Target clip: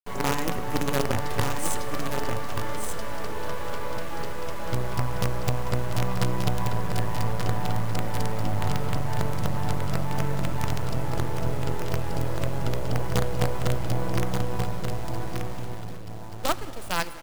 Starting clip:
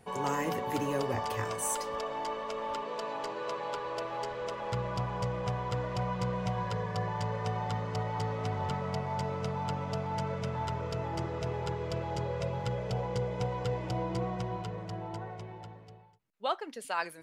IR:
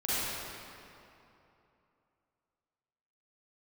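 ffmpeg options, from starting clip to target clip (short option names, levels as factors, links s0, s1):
-filter_complex "[0:a]acrusher=bits=5:dc=4:mix=0:aa=0.000001,lowshelf=f=230:g=9,aecho=1:1:1181:0.531,asplit=2[s0][s1];[1:a]atrim=start_sample=2205,asetrate=29106,aresample=44100[s2];[s1][s2]afir=irnorm=-1:irlink=0,volume=0.0473[s3];[s0][s3]amix=inputs=2:normalize=0,volume=1.58"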